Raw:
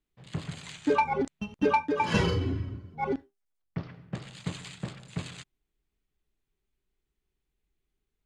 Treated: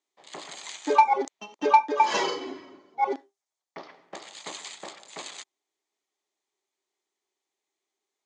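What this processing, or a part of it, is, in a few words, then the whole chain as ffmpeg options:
phone speaker on a table: -filter_complex "[0:a]asettb=1/sr,asplit=3[link_01][link_02][link_03];[link_01]atrim=end=1.294[link_04];[link_02]atrim=start=1.29:end=3.09,asetpts=PTS-STARTPTS,afade=type=in:duration=0.004:curve=qsin,afade=type=out:start_time=1.796:duration=0.004:curve=qsin,lowpass=7400[link_05];[link_03]atrim=start=3.086[link_06];[link_04][link_05]acrossfade=duration=0.004:curve1=hsin:curve2=qsin[link_07];[link_07][link_06]acrossfade=duration=0.004:curve1=qsin:curve2=hsin,highpass=frequency=390:width=0.5412,highpass=frequency=390:width=1.3066,equalizer=frequency=470:width_type=q:width=4:gain=-7,equalizer=frequency=850:width_type=q:width=4:gain=3,equalizer=frequency=1500:width_type=q:width=4:gain=-8,equalizer=frequency=2700:width_type=q:width=4:gain=-7,equalizer=frequency=6500:width_type=q:width=4:gain=5,lowpass=frequency=8500:width=0.5412,lowpass=frequency=8500:width=1.3066,volume=6dB"

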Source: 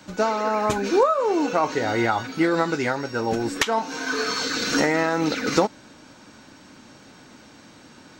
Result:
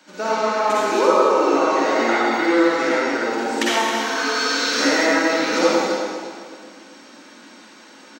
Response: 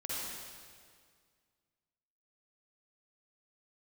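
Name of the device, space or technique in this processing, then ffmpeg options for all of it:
stadium PA: -filter_complex "[0:a]highpass=frequency=230:width=0.5412,highpass=frequency=230:width=1.3066,equalizer=frequency=2600:width_type=o:width=2.9:gain=3.5,aecho=1:1:183.7|271.1:0.251|0.316[link_01];[1:a]atrim=start_sample=2205[link_02];[link_01][link_02]afir=irnorm=-1:irlink=0,volume=-1dB"

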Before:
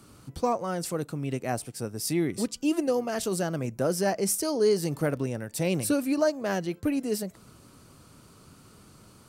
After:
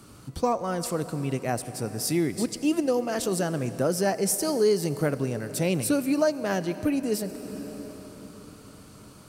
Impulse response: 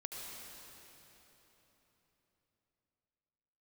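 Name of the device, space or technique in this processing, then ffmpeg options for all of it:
ducked reverb: -filter_complex "[0:a]asplit=3[link_01][link_02][link_03];[1:a]atrim=start_sample=2205[link_04];[link_02][link_04]afir=irnorm=-1:irlink=0[link_05];[link_03]apad=whole_len=409386[link_06];[link_05][link_06]sidechaincompress=threshold=-31dB:ratio=8:attack=45:release=915,volume=-1.5dB[link_07];[link_01][link_07]amix=inputs=2:normalize=0"

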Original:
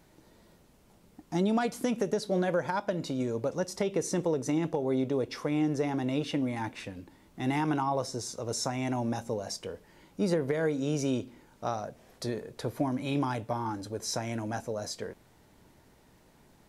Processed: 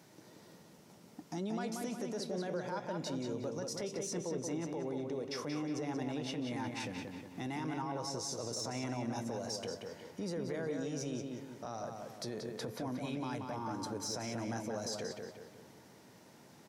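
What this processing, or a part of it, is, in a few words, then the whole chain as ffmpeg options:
broadcast voice chain: -filter_complex "[0:a]highpass=frequency=110:width=0.5412,highpass=frequency=110:width=1.3066,deesser=0.75,acompressor=threshold=-38dB:ratio=3,equalizer=frequency=5600:width_type=o:width=0.53:gain=6,alimiter=level_in=8.5dB:limit=-24dB:level=0:latency=1:release=18,volume=-8.5dB,asplit=2[link_01][link_02];[link_02]adelay=181,lowpass=frequency=4200:poles=1,volume=-4dB,asplit=2[link_03][link_04];[link_04]adelay=181,lowpass=frequency=4200:poles=1,volume=0.47,asplit=2[link_05][link_06];[link_06]adelay=181,lowpass=frequency=4200:poles=1,volume=0.47,asplit=2[link_07][link_08];[link_08]adelay=181,lowpass=frequency=4200:poles=1,volume=0.47,asplit=2[link_09][link_10];[link_10]adelay=181,lowpass=frequency=4200:poles=1,volume=0.47,asplit=2[link_11][link_12];[link_12]adelay=181,lowpass=frequency=4200:poles=1,volume=0.47[link_13];[link_01][link_03][link_05][link_07][link_09][link_11][link_13]amix=inputs=7:normalize=0,volume=1dB"

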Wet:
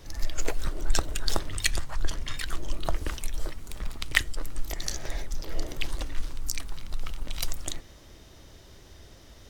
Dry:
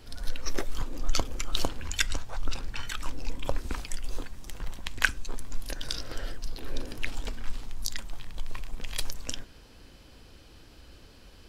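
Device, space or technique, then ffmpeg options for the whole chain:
nightcore: -af "asetrate=53361,aresample=44100,volume=1.5dB"

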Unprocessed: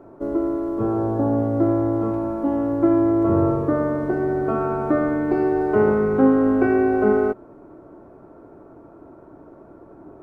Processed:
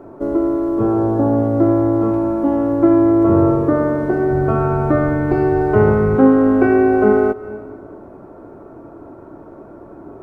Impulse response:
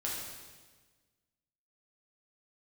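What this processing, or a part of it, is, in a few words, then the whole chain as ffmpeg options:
ducked reverb: -filter_complex "[0:a]asplit=3[link_01][link_02][link_03];[1:a]atrim=start_sample=2205[link_04];[link_02][link_04]afir=irnorm=-1:irlink=0[link_05];[link_03]apad=whole_len=450916[link_06];[link_05][link_06]sidechaincompress=threshold=-34dB:ratio=8:attack=46:release=162,volume=-9dB[link_07];[link_01][link_07]amix=inputs=2:normalize=0,asettb=1/sr,asplit=3[link_08][link_09][link_10];[link_08]atrim=end=4.314[link_11];[link_09]atrim=start=4.31:end=6.16,asetpts=PTS-STARTPTS,afade=type=in:duration=0.004:curve=qsin,afade=type=out:start_time=1.846:duration=0.004:curve=qsin,lowshelf=frequency=170:width_type=q:width=1.5:gain=8[link_12];[link_10]atrim=start=6.156[link_13];[link_11][link_12]acrossfade=duration=0.004:curve1=hsin:curve2=qsin[link_14];[link_14][link_13]acrossfade=duration=0.004:curve1=qsin:curve2=hsin,volume=4.5dB"

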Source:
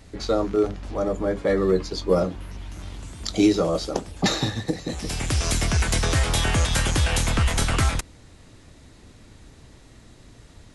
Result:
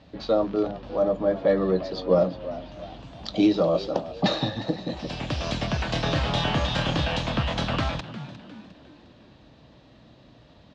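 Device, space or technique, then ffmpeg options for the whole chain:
frequency-shifting delay pedal into a guitar cabinet: -filter_complex "[0:a]asettb=1/sr,asplit=3[link_01][link_02][link_03];[link_01]atrim=end=5.864[link_04];[link_02]atrim=start=5.86:end=7.05,asetpts=PTS-STARTPTS,afade=type=in:duration=0.004:curve=qsin,afade=type=out:start_time=1.186:duration=0.004:curve=qsin,asplit=2[link_05][link_06];[link_06]adelay=31,volume=-5dB[link_07];[link_05][link_07]amix=inputs=2:normalize=0,atrim=end_sample=52479[link_08];[link_03]atrim=start=7.046[link_09];[link_04][link_08]acrossfade=duration=0.004:curve1=hsin:curve2=qsin[link_10];[link_10][link_09]acrossfade=duration=0.004:curve1=qsin:curve2=hsin,asplit=5[link_11][link_12][link_13][link_14][link_15];[link_12]adelay=355,afreqshift=76,volume=-15.5dB[link_16];[link_13]adelay=710,afreqshift=152,volume=-23.2dB[link_17];[link_14]adelay=1065,afreqshift=228,volume=-31dB[link_18];[link_15]adelay=1420,afreqshift=304,volume=-38.7dB[link_19];[link_11][link_16][link_17][link_18][link_19]amix=inputs=5:normalize=0,highpass=89,equalizer=frequency=92:width_type=q:width=4:gain=-10,equalizer=frequency=400:width_type=q:width=4:gain=-7,equalizer=frequency=600:width_type=q:width=4:gain=5,equalizer=frequency=1400:width_type=q:width=4:gain=-5,equalizer=frequency=2100:width_type=q:width=4:gain=-8,lowpass=frequency=4100:width=0.5412,lowpass=frequency=4100:width=1.3066"

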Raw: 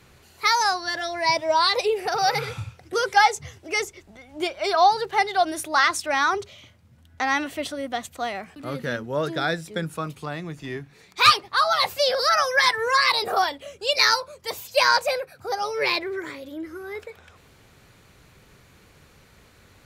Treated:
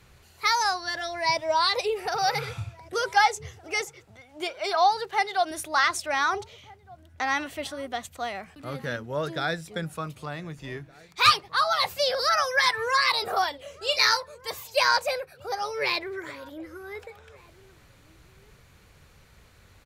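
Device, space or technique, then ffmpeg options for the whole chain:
low shelf boost with a cut just above: -filter_complex "[0:a]asettb=1/sr,asplit=3[link_01][link_02][link_03];[link_01]atrim=end=3.814[link_04];[link_02]atrim=start=3.81:end=5.51,asetpts=PTS-STARTPTS,afade=type=in:duration=0.004:curve=qsin,afade=type=out:start_time=1.696:duration=0.004:curve=qsin,highpass=frequency=240:poles=1[link_05];[link_03]atrim=start=5.506[link_06];[link_04][link_05]acrossfade=duration=0.004:curve1=hsin:curve2=qsin[link_07];[link_07][link_06]acrossfade=duration=0.004:curve1=qsin:curve2=hsin,asettb=1/sr,asplit=3[link_08][link_09][link_10];[link_08]atrim=end=13.704[link_11];[link_09]atrim=start=13.7:end=14.17,asetpts=PTS-STARTPTS,afade=type=in:duration=0.004:curve=qsin,afade=type=out:start_time=0.466:duration=0.004:curve=qsin,asplit=2[link_12][link_13];[link_13]adelay=39,volume=-9dB[link_14];[link_12][link_14]amix=inputs=2:normalize=0,atrim=end_sample=20727[link_15];[link_10]atrim=start=14.166[link_16];[link_11][link_15]acrossfade=duration=0.004:curve1=hsin:curve2=qsin[link_17];[link_17][link_16]acrossfade=duration=0.004:curve1=qsin:curve2=hsin,lowshelf=frequency=77:gain=7.5,equalizer=frequency=280:width_type=o:width=1.2:gain=-4,asplit=2[link_18][link_19];[link_19]adelay=1516,volume=-22dB,highshelf=frequency=4000:gain=-34.1[link_20];[link_18][link_20]amix=inputs=2:normalize=0,volume=-3dB"

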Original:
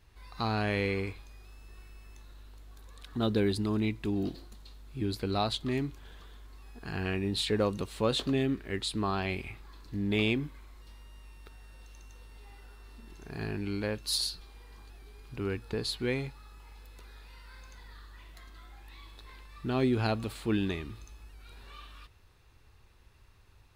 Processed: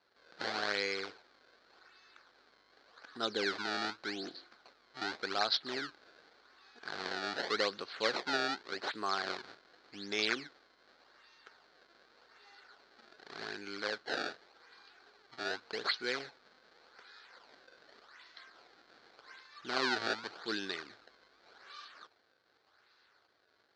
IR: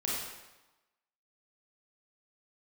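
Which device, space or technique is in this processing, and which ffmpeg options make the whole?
circuit-bent sampling toy: -af "acrusher=samples=24:mix=1:aa=0.000001:lfo=1:lforange=38.4:lforate=0.86,highpass=570,equalizer=frequency=620:width_type=q:width=4:gain=-3,equalizer=frequency=950:width_type=q:width=4:gain=-5,equalizer=frequency=1500:width_type=q:width=4:gain=7,equalizer=frequency=2700:width_type=q:width=4:gain=-5,equalizer=frequency=4300:width_type=q:width=4:gain=10,lowpass=frequency=5200:width=0.5412,lowpass=frequency=5200:width=1.3066"

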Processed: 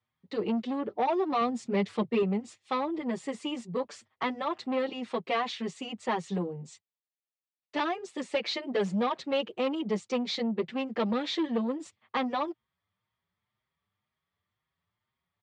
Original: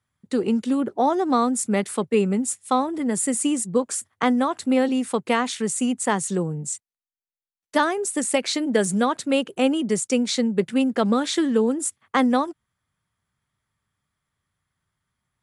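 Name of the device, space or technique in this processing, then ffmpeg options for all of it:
barber-pole flanger into a guitar amplifier: -filter_complex "[0:a]asplit=2[link_01][link_02];[link_02]adelay=6.2,afreqshift=2[link_03];[link_01][link_03]amix=inputs=2:normalize=1,asoftclip=type=tanh:threshold=-20.5dB,highpass=100,equalizer=frequency=140:width_type=q:width=4:gain=-9,equalizer=frequency=270:width_type=q:width=4:gain=-8,equalizer=frequency=1500:width_type=q:width=4:gain=-7,lowpass=frequency=4400:width=0.5412,lowpass=frequency=4400:width=1.3066,asettb=1/sr,asplit=3[link_04][link_05][link_06];[link_04]atrim=end=1.414[link_07];[link_05]atrim=start=1.41:end=2.23,asetpts=PTS-STARTPTS,afade=type=in:duration=0.004:curve=qsin,afade=type=out:start_time=0.816:duration=0.004:curve=qsin,bass=frequency=250:gain=7,treble=frequency=4000:gain=2[link_08];[link_06]atrim=start=2.226[link_09];[link_07][link_08]acrossfade=duration=0.004:curve1=hsin:curve2=qsin[link_10];[link_10][link_09]acrossfade=duration=0.004:curve1=qsin:curve2=hsin"

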